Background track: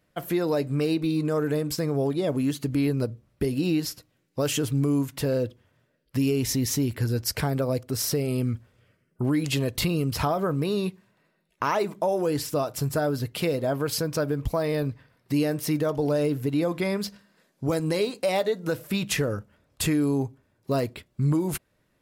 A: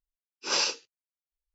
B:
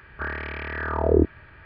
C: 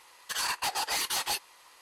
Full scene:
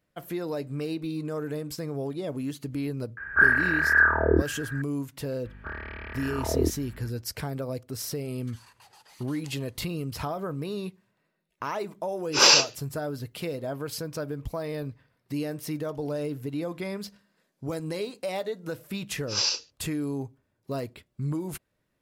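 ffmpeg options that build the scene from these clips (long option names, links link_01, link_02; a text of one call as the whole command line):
ffmpeg -i bed.wav -i cue0.wav -i cue1.wav -i cue2.wav -filter_complex "[2:a]asplit=2[link_01][link_02];[1:a]asplit=2[link_03][link_04];[0:a]volume=-7dB[link_05];[link_01]lowpass=frequency=1600:width_type=q:width=13[link_06];[link_02]aeval=exprs='val(0)+0.0126*(sin(2*PI*50*n/s)+sin(2*PI*2*50*n/s)/2+sin(2*PI*3*50*n/s)/3+sin(2*PI*4*50*n/s)/4+sin(2*PI*5*50*n/s)/5)':channel_layout=same[link_07];[3:a]acompressor=threshold=-37dB:ratio=6:attack=3.2:release=140:knee=1:detection=peak[link_08];[link_03]dynaudnorm=framelen=100:gausssize=5:maxgain=11.5dB[link_09];[link_04]equalizer=frequency=5000:width_type=o:width=1.1:gain=10[link_10];[link_06]atrim=end=1.65,asetpts=PTS-STARTPTS,volume=-4dB,afade=type=in:duration=0.004:curve=hsin,afade=type=out:start_time=1.646:duration=0.004:curve=hsin,adelay=139797S[link_11];[link_07]atrim=end=1.65,asetpts=PTS-STARTPTS,volume=-7dB,afade=type=in:duration=0.004:curve=hsin,afade=type=out:start_time=1.646:duration=0.004:curve=hsin,adelay=240345S[link_12];[link_08]atrim=end=1.81,asetpts=PTS-STARTPTS,volume=-16dB,afade=type=in:duration=0.004:curve=hsin,afade=type=out:start_time=1.806:duration=0.004:curve=hsin,adelay=360738S[link_13];[link_09]atrim=end=1.54,asetpts=PTS-STARTPTS,afade=type=in:duration=0.004:curve=hsin,afade=type=out:start_time=1.536:duration=0.004:curve=hsin,adelay=11900[link_14];[link_10]atrim=end=1.54,asetpts=PTS-STARTPTS,volume=-7.5dB,afade=type=in:duration=0.004:curve=hsin,afade=type=out:start_time=1.536:duration=0.004:curve=hsin,adelay=18850[link_15];[link_05][link_11][link_12][link_13][link_14][link_15]amix=inputs=6:normalize=0" out.wav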